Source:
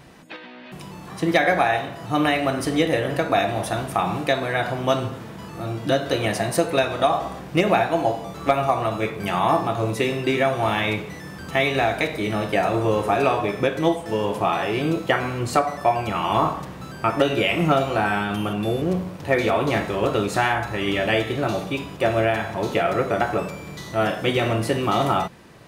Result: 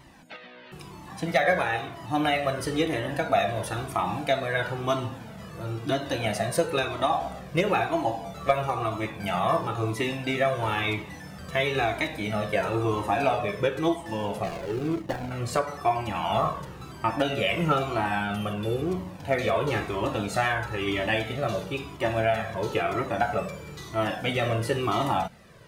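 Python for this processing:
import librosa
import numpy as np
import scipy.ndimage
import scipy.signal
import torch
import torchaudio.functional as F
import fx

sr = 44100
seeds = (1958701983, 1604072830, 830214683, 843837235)

y = fx.median_filter(x, sr, points=41, at=(14.43, 15.31))
y = fx.comb_cascade(y, sr, direction='falling', hz=1.0)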